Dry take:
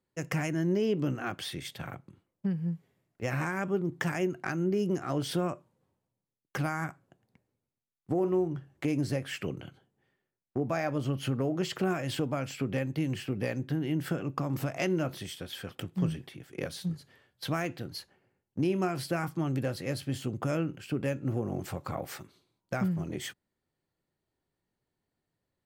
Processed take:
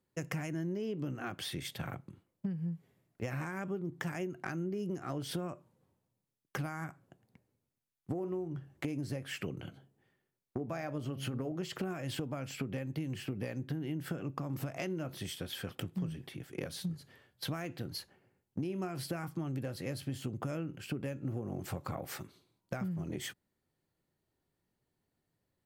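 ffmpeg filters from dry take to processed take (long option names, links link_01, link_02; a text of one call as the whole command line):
ffmpeg -i in.wav -filter_complex "[0:a]asettb=1/sr,asplit=3[link_01][link_02][link_03];[link_01]atrim=end=9.594[link_04];[link_02]atrim=start=9.59:end=11.52,asetpts=PTS-STARTPTS,afade=type=in:duration=0.004:curve=qsin,afade=type=out:start_time=1.926:duration=0.004:curve=qsin,bandreject=frequency=68.13:width_type=h:width=4,bandreject=frequency=136.26:width_type=h:width=4,bandreject=frequency=204.39:width_type=h:width=4,bandreject=frequency=272.52:width_type=h:width=4,bandreject=frequency=340.65:width_type=h:width=4,bandreject=frequency=408.78:width_type=h:width=4,bandreject=frequency=476.91:width_type=h:width=4,bandreject=frequency=545.04:width_type=h:width=4,bandreject=frequency=613.17:width_type=h:width=4,bandreject=frequency=681.3:width_type=h:width=4[link_05];[link_03]atrim=start=11.516[link_06];[link_04][link_05]acrossfade=duration=0.004:curve1=hsin:curve2=qsin[link_07];[link_07][link_06]acrossfade=duration=0.004:curve1=qsin:curve2=hsin,equalizer=frequency=12000:width_type=o:width=0.51:gain=3.5,acompressor=threshold=-36dB:ratio=6,equalizer=frequency=130:width_type=o:width=3:gain=2.5" out.wav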